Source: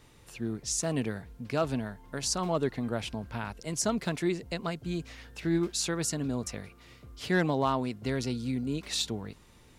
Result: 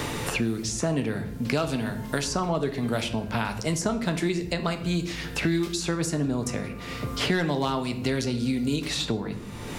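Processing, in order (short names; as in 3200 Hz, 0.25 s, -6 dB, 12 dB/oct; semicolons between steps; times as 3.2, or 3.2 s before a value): shoebox room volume 84 m³, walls mixed, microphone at 0.33 m; three-band squash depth 100%; gain +3.5 dB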